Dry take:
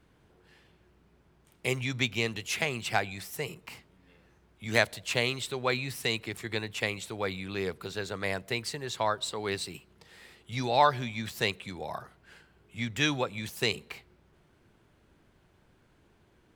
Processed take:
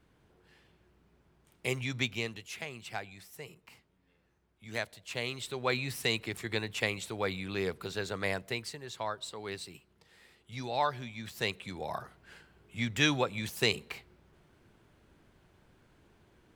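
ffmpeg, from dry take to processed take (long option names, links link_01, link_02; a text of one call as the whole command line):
ffmpeg -i in.wav -af "volume=15.5dB,afade=type=out:start_time=2.02:duration=0.47:silence=0.398107,afade=type=in:start_time=5.05:duration=0.83:silence=0.298538,afade=type=out:start_time=8.26:duration=0.52:silence=0.446684,afade=type=in:start_time=11.18:duration=0.8:silence=0.398107" out.wav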